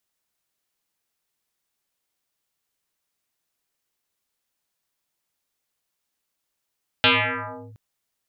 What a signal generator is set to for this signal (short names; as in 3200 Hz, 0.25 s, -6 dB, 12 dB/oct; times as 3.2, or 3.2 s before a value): FM tone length 0.72 s, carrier 108 Hz, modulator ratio 3.4, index 9.6, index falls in 0.69 s linear, decay 1.39 s, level -12 dB